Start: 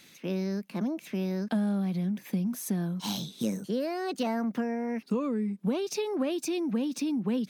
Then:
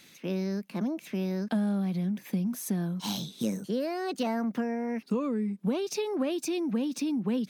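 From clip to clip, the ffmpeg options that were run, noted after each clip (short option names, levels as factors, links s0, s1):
-af anull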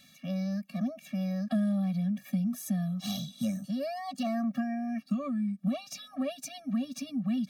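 -af "afftfilt=real='re*eq(mod(floor(b*sr/1024/270),2),0)':imag='im*eq(mod(floor(b*sr/1024/270),2),0)':win_size=1024:overlap=0.75"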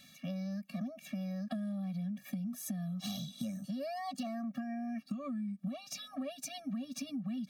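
-af "acompressor=threshold=0.0158:ratio=6"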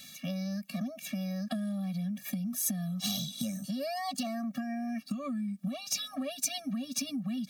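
-af "highshelf=f=3100:g=10,volume=1.5"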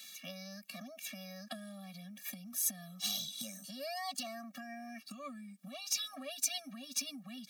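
-af "highpass=f=1000:p=1,volume=0.841"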